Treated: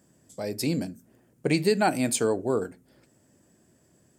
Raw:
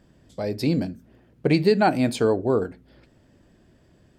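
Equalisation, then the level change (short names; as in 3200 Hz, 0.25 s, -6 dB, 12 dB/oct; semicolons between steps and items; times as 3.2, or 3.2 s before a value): HPF 110 Hz 12 dB/oct; resonant high shelf 5500 Hz +12.5 dB, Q 1.5; dynamic EQ 2800 Hz, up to +6 dB, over -43 dBFS, Q 0.86; -4.5 dB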